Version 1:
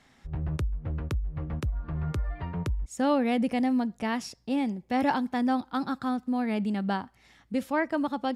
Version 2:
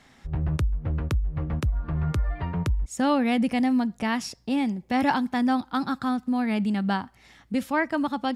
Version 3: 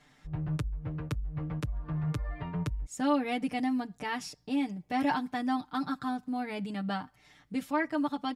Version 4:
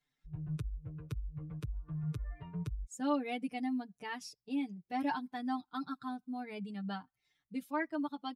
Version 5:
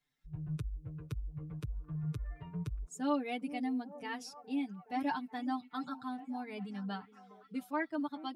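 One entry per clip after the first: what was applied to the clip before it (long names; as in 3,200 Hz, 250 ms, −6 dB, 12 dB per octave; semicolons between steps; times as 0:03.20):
dynamic equaliser 480 Hz, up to −6 dB, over −40 dBFS, Q 1.1; level +5 dB
comb filter 6.7 ms, depth 84%; level −8.5 dB
spectral dynamics exaggerated over time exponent 1.5; level −4 dB
echo through a band-pass that steps 417 ms, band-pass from 360 Hz, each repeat 0.7 octaves, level −11 dB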